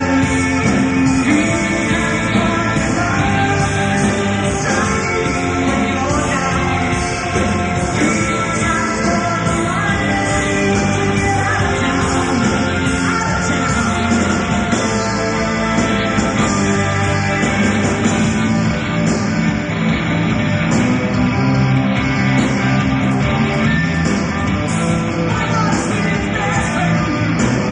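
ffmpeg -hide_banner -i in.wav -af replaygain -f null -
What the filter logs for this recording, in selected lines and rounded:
track_gain = -0.9 dB
track_peak = 0.484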